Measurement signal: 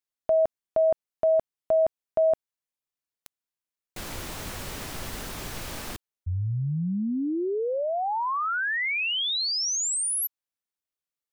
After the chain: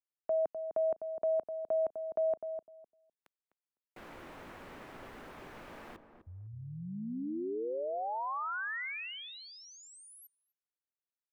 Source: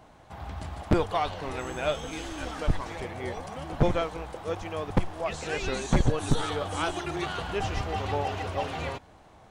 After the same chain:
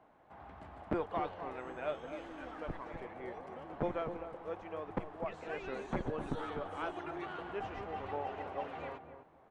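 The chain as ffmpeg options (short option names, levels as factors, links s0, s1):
-filter_complex "[0:a]acrossover=split=200 2500:gain=0.251 1 0.112[s0][s1][s2];[s0][s1][s2]amix=inputs=3:normalize=0,asplit=2[s3][s4];[s4]adelay=253,lowpass=f=850:p=1,volume=0.447,asplit=2[s5][s6];[s6]adelay=253,lowpass=f=850:p=1,volume=0.2,asplit=2[s7][s8];[s8]adelay=253,lowpass=f=850:p=1,volume=0.2[s9];[s3][s5][s7][s9]amix=inputs=4:normalize=0,volume=0.355"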